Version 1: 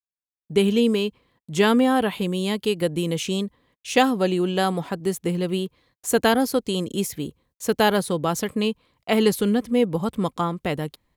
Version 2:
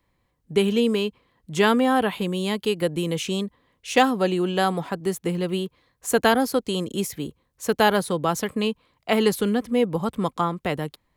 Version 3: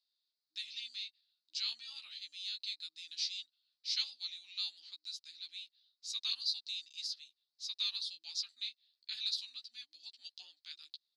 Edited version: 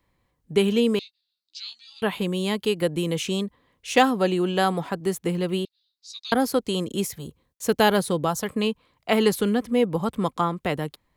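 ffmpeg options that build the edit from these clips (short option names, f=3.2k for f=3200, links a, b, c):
-filter_complex "[2:a]asplit=2[a][b];[1:a]asplit=4[c][d][e][f];[c]atrim=end=0.992[g];[a]atrim=start=0.988:end=2.022[h];[d]atrim=start=2.018:end=5.652[i];[b]atrim=start=5.648:end=6.322[j];[e]atrim=start=6.318:end=7.34[k];[0:a]atrim=start=7.1:end=8.48[l];[f]atrim=start=8.24[m];[g][h]acrossfade=d=0.004:c1=hsin:c2=hsin[n];[n][i]acrossfade=d=0.004:c1=hsin:c2=hsin[o];[o][j]acrossfade=d=0.004:c1=hsin:c2=hsin[p];[p][k]acrossfade=d=0.004:c1=hsin:c2=hsin[q];[q][l]acrossfade=d=0.24:c1=tri:c2=tri[r];[r][m]acrossfade=d=0.24:c1=tri:c2=tri"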